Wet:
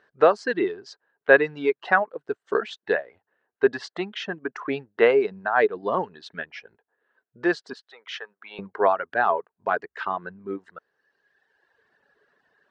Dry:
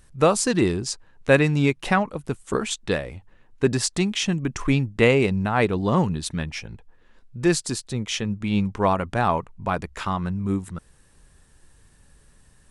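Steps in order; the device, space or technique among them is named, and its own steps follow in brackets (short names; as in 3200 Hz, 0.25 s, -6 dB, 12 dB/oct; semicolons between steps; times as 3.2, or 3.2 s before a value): phone earpiece (speaker cabinet 410–3700 Hz, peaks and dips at 420 Hz +8 dB, 680 Hz +5 dB, 1600 Hz +9 dB, 2400 Hz -7 dB, 3400 Hz -5 dB); 7.73–8.59 HPF 840 Hz 12 dB/oct; reverb removal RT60 1.6 s; gain -1 dB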